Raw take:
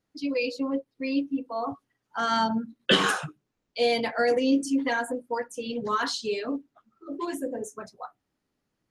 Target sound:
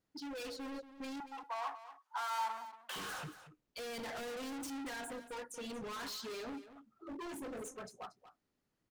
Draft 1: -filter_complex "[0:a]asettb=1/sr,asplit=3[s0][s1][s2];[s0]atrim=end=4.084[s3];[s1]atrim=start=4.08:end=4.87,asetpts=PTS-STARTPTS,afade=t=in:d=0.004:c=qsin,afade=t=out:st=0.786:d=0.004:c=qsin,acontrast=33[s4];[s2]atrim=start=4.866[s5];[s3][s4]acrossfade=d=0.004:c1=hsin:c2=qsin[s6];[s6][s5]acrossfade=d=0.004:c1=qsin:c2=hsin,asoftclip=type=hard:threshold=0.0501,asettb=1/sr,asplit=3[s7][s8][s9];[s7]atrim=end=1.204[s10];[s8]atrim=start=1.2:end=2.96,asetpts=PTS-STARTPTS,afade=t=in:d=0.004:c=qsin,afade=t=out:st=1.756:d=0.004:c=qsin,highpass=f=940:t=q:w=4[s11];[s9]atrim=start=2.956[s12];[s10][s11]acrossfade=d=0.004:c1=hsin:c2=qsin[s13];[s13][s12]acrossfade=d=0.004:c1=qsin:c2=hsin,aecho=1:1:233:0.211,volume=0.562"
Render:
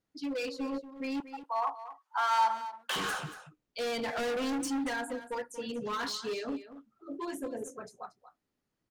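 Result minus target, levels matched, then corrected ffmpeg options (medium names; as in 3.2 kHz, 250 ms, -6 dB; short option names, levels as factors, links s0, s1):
hard clipper: distortion -4 dB
-filter_complex "[0:a]asettb=1/sr,asplit=3[s0][s1][s2];[s0]atrim=end=4.084[s3];[s1]atrim=start=4.08:end=4.87,asetpts=PTS-STARTPTS,afade=t=in:d=0.004:c=qsin,afade=t=out:st=0.786:d=0.004:c=qsin,acontrast=33[s4];[s2]atrim=start=4.866[s5];[s3][s4]acrossfade=d=0.004:c1=hsin:c2=qsin[s6];[s6][s5]acrossfade=d=0.004:c1=qsin:c2=hsin,asoftclip=type=hard:threshold=0.0133,asettb=1/sr,asplit=3[s7][s8][s9];[s7]atrim=end=1.204[s10];[s8]atrim=start=1.2:end=2.96,asetpts=PTS-STARTPTS,afade=t=in:d=0.004:c=qsin,afade=t=out:st=1.756:d=0.004:c=qsin,highpass=f=940:t=q:w=4[s11];[s9]atrim=start=2.956[s12];[s10][s11]acrossfade=d=0.004:c1=hsin:c2=qsin[s13];[s13][s12]acrossfade=d=0.004:c1=qsin:c2=hsin,aecho=1:1:233:0.211,volume=0.562"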